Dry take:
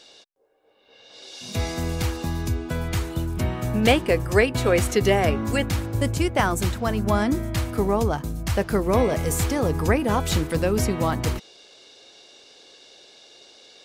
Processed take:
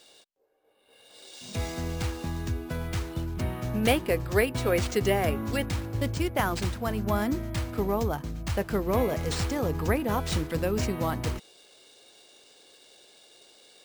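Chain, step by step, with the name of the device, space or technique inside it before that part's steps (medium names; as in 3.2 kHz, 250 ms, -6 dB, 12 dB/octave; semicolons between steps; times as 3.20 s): crushed at another speed (playback speed 0.5×; sample-and-hold 7×; playback speed 2×); trim -5.5 dB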